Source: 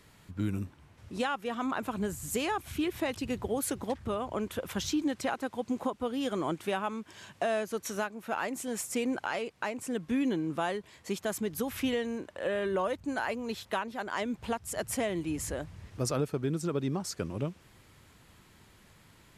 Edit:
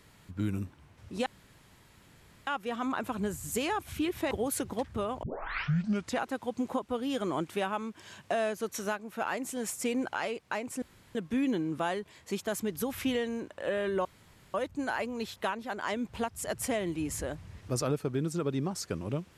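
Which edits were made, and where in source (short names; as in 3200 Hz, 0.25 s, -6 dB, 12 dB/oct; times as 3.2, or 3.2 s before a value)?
1.26 insert room tone 1.21 s
3.1–3.42 cut
4.34 tape start 0.97 s
9.93 insert room tone 0.33 s
12.83 insert room tone 0.49 s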